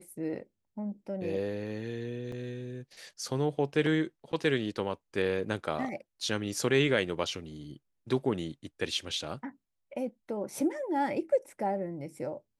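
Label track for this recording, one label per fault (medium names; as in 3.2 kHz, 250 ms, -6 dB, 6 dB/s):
2.320000	2.320000	dropout 3.4 ms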